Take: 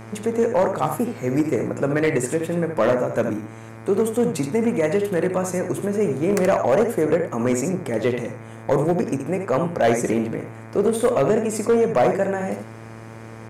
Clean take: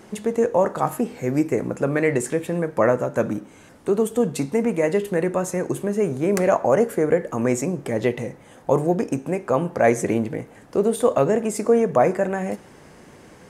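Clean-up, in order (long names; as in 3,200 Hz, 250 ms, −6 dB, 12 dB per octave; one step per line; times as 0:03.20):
clipped peaks rebuilt −11.5 dBFS
hum removal 112.5 Hz, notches 22
echo removal 76 ms −7.5 dB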